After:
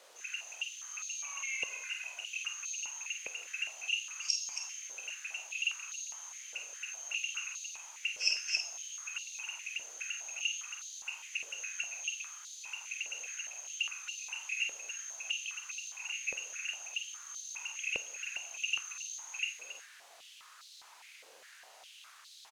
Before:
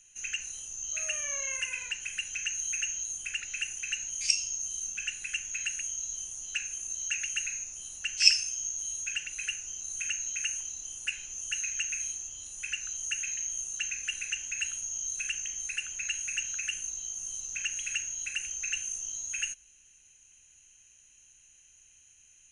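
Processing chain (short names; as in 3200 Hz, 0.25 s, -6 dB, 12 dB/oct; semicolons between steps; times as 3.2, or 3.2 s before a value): fixed phaser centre 2600 Hz, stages 8; requantised 8-bit, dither triangular; air absorption 57 m; doubler 49 ms -7.5 dB; loudspeakers at several distances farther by 10 m -10 dB, 94 m -4 dB; stepped high-pass 4.9 Hz 510–4000 Hz; gain -8 dB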